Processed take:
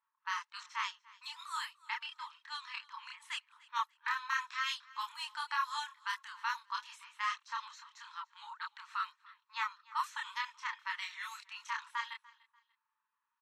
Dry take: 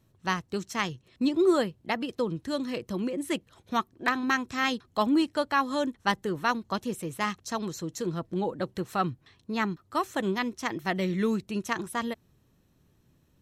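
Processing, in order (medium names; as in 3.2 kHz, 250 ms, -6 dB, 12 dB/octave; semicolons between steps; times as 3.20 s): level-controlled noise filter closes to 1.1 kHz, open at -22 dBFS; peak limiter -20.5 dBFS, peak gain reduction 9.5 dB; chorus voices 2, 0.81 Hz, delay 28 ms, depth 2.4 ms; brick-wall FIR high-pass 860 Hz; on a send: feedback delay 293 ms, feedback 31%, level -22.5 dB; on the sum: trim +2 dB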